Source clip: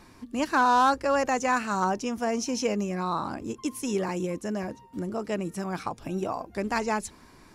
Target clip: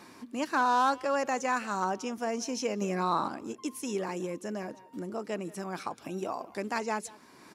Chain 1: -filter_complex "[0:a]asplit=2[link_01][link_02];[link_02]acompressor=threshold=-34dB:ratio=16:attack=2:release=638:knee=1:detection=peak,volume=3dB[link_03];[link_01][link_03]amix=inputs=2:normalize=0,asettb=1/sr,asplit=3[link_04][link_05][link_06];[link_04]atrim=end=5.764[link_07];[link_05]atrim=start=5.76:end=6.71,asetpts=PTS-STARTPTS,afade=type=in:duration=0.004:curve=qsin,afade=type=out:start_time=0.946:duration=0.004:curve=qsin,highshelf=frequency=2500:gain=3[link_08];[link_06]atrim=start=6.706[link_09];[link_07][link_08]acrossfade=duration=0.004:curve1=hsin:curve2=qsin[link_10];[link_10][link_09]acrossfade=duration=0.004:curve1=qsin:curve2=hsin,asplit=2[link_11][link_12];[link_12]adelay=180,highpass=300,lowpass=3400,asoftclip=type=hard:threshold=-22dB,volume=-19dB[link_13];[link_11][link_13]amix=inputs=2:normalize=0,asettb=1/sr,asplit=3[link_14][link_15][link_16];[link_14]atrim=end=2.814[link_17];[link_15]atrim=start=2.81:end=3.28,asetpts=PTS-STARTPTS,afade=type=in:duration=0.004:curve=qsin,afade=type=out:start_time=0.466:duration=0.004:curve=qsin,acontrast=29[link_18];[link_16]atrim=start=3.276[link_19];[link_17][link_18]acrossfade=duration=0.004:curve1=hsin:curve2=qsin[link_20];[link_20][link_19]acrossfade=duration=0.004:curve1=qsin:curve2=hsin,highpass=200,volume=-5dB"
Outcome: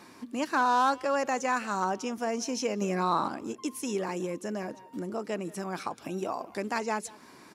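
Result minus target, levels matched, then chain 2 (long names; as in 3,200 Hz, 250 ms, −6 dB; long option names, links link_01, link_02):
downward compressor: peak gain reduction −9 dB
-filter_complex "[0:a]asplit=2[link_01][link_02];[link_02]acompressor=threshold=-43.5dB:ratio=16:attack=2:release=638:knee=1:detection=peak,volume=3dB[link_03];[link_01][link_03]amix=inputs=2:normalize=0,asettb=1/sr,asplit=3[link_04][link_05][link_06];[link_04]atrim=end=5.764[link_07];[link_05]atrim=start=5.76:end=6.71,asetpts=PTS-STARTPTS,afade=type=in:duration=0.004:curve=qsin,afade=type=out:start_time=0.946:duration=0.004:curve=qsin,highshelf=frequency=2500:gain=3[link_08];[link_06]atrim=start=6.706[link_09];[link_07][link_08]acrossfade=duration=0.004:curve1=hsin:curve2=qsin[link_10];[link_10][link_09]acrossfade=duration=0.004:curve1=qsin:curve2=hsin,asplit=2[link_11][link_12];[link_12]adelay=180,highpass=300,lowpass=3400,asoftclip=type=hard:threshold=-22dB,volume=-19dB[link_13];[link_11][link_13]amix=inputs=2:normalize=0,asettb=1/sr,asplit=3[link_14][link_15][link_16];[link_14]atrim=end=2.814[link_17];[link_15]atrim=start=2.81:end=3.28,asetpts=PTS-STARTPTS,afade=type=in:duration=0.004:curve=qsin,afade=type=out:start_time=0.466:duration=0.004:curve=qsin,acontrast=29[link_18];[link_16]atrim=start=3.276[link_19];[link_17][link_18]acrossfade=duration=0.004:curve1=hsin:curve2=qsin[link_20];[link_20][link_19]acrossfade=duration=0.004:curve1=qsin:curve2=hsin,highpass=200,volume=-5dB"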